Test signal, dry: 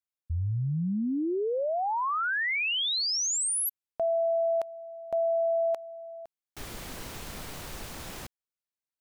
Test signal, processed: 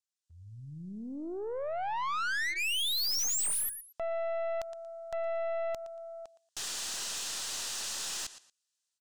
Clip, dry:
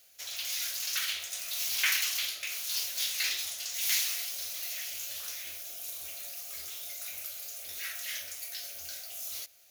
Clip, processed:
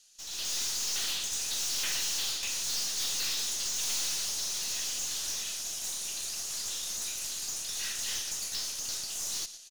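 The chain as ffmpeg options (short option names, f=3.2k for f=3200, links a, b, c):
-filter_complex "[0:a]lowpass=f=7.8k:w=0.5412,lowpass=f=7.8k:w=1.3066,aderivative,bandreject=f=2.2k:w=5.1,aecho=1:1:116|232:0.141|0.0297,asplit=2[a][b];[b]acompressor=threshold=-51dB:ratio=6:attack=0.32:release=143:knee=6:detection=rms,volume=-2dB[c];[a][c]amix=inputs=2:normalize=0,aeval=exprs='(tanh(178*val(0)+0.45)-tanh(0.45))/178':c=same,dynaudnorm=f=140:g=5:m=11.5dB,volume=3dB"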